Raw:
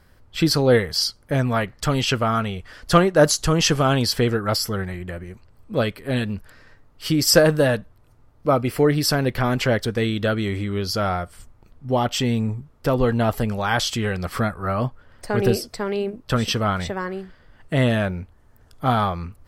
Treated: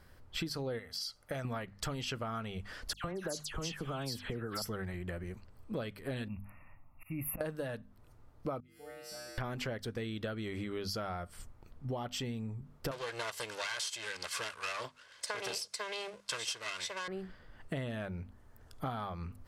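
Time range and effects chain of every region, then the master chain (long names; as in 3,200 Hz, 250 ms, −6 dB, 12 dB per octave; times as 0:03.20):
0:00.79–0:01.45: low-shelf EQ 390 Hz −10 dB + comb filter 1.5 ms, depth 31% + downward compressor 4 to 1, threshold −24 dBFS
0:02.93–0:04.62: downward compressor 4 to 1, threshold −24 dBFS + all-pass dispersion lows, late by 109 ms, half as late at 2,400 Hz
0:06.28–0:07.41: phaser with its sweep stopped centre 1,600 Hz, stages 6 + volume swells 275 ms + linear-phase brick-wall band-stop 2,800–10,000 Hz
0:08.60–0:09.38: parametric band 950 Hz −14.5 dB 0.24 octaves + tuned comb filter 67 Hz, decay 1.8 s, harmonics odd, mix 100%
0:12.91–0:17.08: lower of the sound and its delayed copy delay 1.9 ms + meter weighting curve ITU-R 468
whole clip: mains-hum notches 50/100/150/200/250 Hz; downward compressor 12 to 1, threshold −31 dBFS; level −4 dB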